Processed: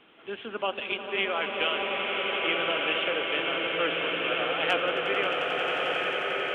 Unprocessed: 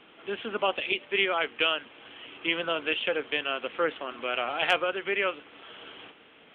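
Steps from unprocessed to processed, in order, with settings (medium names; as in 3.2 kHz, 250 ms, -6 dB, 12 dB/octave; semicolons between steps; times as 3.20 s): on a send: echo with a slow build-up 89 ms, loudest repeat 8, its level -12.5 dB; on the sum: swelling reverb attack 1300 ms, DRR 0 dB; trim -3 dB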